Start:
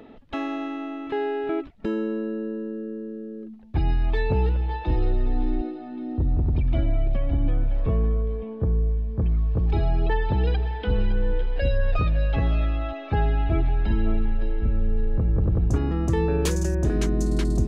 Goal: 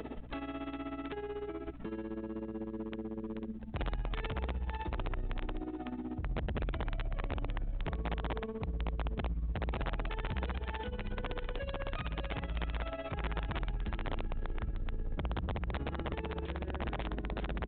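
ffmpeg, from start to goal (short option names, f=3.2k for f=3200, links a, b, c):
-filter_complex "[0:a]asplit=2[a][b];[b]adelay=100,highpass=300,lowpass=3.4k,asoftclip=type=hard:threshold=-21dB,volume=-12dB[c];[a][c]amix=inputs=2:normalize=0,acompressor=threshold=-28dB:ratio=4,tremolo=f=16:d=0.83,asplit=3[d][e][f];[d]afade=t=out:st=10.57:d=0.02[g];[e]lowshelf=f=86:g=-9,afade=t=in:st=10.57:d=0.02,afade=t=out:st=12.49:d=0.02[h];[f]afade=t=in:st=12.49:d=0.02[i];[g][h][i]amix=inputs=3:normalize=0,alimiter=level_in=9.5dB:limit=-24dB:level=0:latency=1:release=211,volume=-9.5dB,asoftclip=type=hard:threshold=-39dB,aeval=exprs='val(0)+0.00141*(sin(2*PI*60*n/s)+sin(2*PI*2*60*n/s)/2+sin(2*PI*3*60*n/s)/3+sin(2*PI*4*60*n/s)/4+sin(2*PI*5*60*n/s)/5)':c=same,acrossover=split=130[j][k];[k]acompressor=threshold=-45dB:ratio=4[l];[j][l]amix=inputs=2:normalize=0,aeval=exprs='(mod(66.8*val(0)+1,2)-1)/66.8':c=same,volume=7.5dB" -ar 8000 -c:a adpcm_g726 -b:a 40k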